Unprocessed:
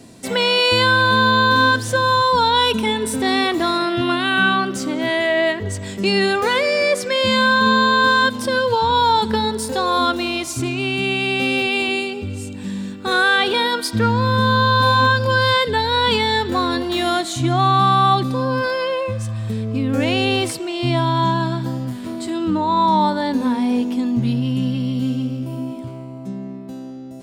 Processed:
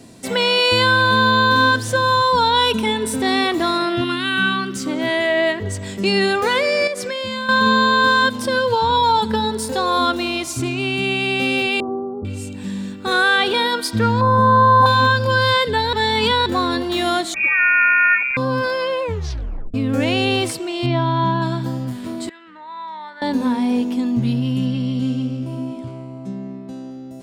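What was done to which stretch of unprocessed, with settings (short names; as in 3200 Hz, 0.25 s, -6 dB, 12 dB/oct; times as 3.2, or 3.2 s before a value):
4.04–4.86 bell 650 Hz -14 dB 1 oct
6.87–7.49 compressor 12:1, threshold -21 dBFS
8.96–9.52 notch comb 360 Hz
11.8–12.25 steep low-pass 1300 Hz 96 dB/oct
14.21–14.86 EQ curve 410 Hz 0 dB, 840 Hz +11 dB, 1600 Hz -5 dB, 2800 Hz -18 dB, 5000 Hz -11 dB, 8300 Hz -8 dB
15.93–16.46 reverse
17.34–18.37 inverted band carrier 2600 Hz
19.02 tape stop 0.72 s
20.86–21.42 air absorption 170 m
22.29–23.22 band-pass 1900 Hz, Q 4
24.66–26.91 LPF 9200 Hz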